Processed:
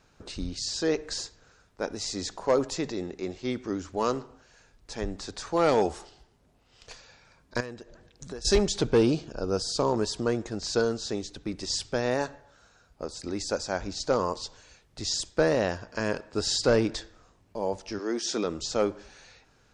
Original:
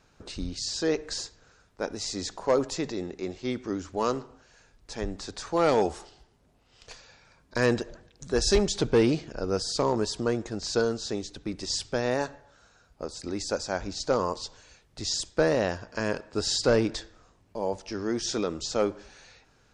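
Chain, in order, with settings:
0:07.60–0:08.45: downward compressor 8 to 1, threshold −37 dBFS, peak gain reduction 17.5 dB
0:08.97–0:09.94: parametric band 2,000 Hz −13 dB 0.31 octaves
0:17.98–0:18.43: high-pass filter 310 Hz → 150 Hz 24 dB per octave

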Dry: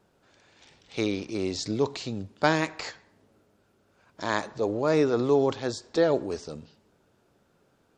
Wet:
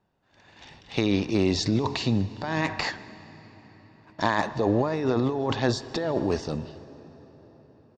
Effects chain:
high-frequency loss of the air 110 metres
comb filter 1.1 ms, depth 37%
noise gate −60 dBFS, range −16 dB
compressor whose output falls as the input rises −30 dBFS, ratio −1
convolution reverb RT60 5.3 s, pre-delay 115 ms, DRR 17 dB
level +6 dB

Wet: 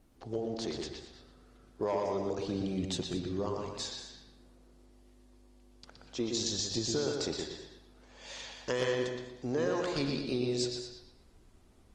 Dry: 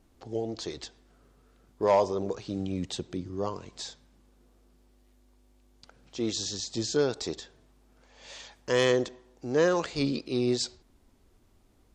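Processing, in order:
downward compressor 6 to 1, threshold −30 dBFS, peak gain reduction 11.5 dB
0:06.20–0:06.62: transient designer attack +10 dB, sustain −10 dB
bucket-brigade delay 120 ms, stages 4,096, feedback 35%, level −4 dB
reverb whose tail is shaped and stops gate 240 ms rising, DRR 9.5 dB
Opus 24 kbit/s 48,000 Hz

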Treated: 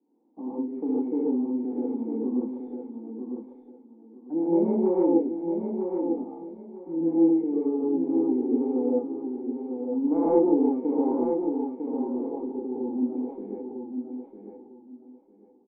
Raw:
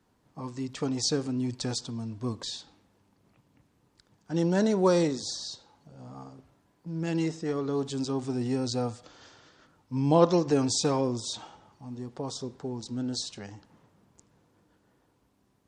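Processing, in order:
phase distortion by the signal itself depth 0.54 ms
Butterworth high-pass 210 Hz 48 dB per octave
in parallel at +2 dB: downward compressor, threshold −39 dBFS, peak gain reduction 20.5 dB
on the sum: leveller curve on the samples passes 1
formant resonators in series u
high-frequency loss of the air 130 metres
double-tracking delay 24 ms −12 dB
hollow resonant body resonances 500/3,100 Hz, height 7 dB
on a send: repeating echo 951 ms, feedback 23%, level −6 dB
on the sum: reverb whose tail is shaped and stops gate 170 ms rising, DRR −6 dB

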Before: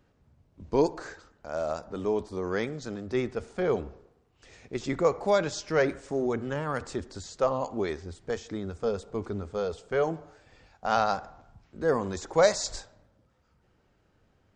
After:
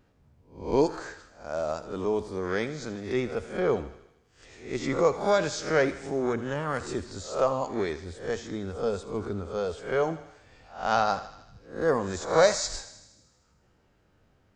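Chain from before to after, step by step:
peak hold with a rise ahead of every peak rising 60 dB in 0.41 s
pitch vibrato 0.95 Hz 11 cents
feedback echo with a high-pass in the loop 78 ms, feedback 67%, high-pass 980 Hz, level −13 dB

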